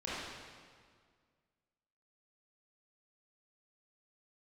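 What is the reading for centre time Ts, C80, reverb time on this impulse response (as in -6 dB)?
129 ms, -1.0 dB, 1.9 s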